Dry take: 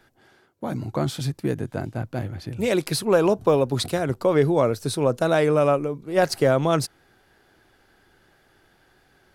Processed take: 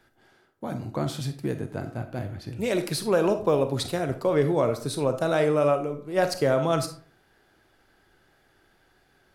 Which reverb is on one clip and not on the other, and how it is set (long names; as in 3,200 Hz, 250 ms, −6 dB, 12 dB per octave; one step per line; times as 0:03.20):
comb and all-pass reverb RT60 0.47 s, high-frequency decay 0.6×, pre-delay 5 ms, DRR 8 dB
level −4 dB